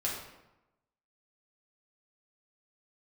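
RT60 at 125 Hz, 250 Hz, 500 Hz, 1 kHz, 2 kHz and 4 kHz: 1.0, 1.0, 0.95, 0.95, 0.80, 0.65 seconds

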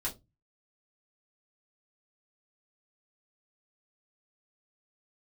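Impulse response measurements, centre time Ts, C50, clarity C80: 14 ms, 16.0 dB, 24.5 dB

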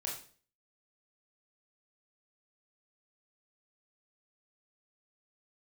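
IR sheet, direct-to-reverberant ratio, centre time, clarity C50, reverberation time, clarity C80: −3.0 dB, 34 ms, 5.5 dB, 0.45 s, 10.0 dB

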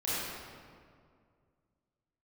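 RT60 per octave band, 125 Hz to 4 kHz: 2.7, 2.5, 2.3, 2.0, 1.6, 1.3 seconds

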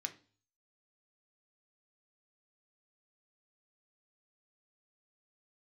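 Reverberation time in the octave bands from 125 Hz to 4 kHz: 0.70, 0.50, 0.40, 0.40, 0.35, 0.45 seconds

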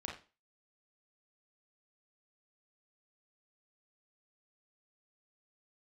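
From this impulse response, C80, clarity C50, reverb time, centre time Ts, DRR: 12.5 dB, 5.5 dB, 0.35 s, 31 ms, −1.5 dB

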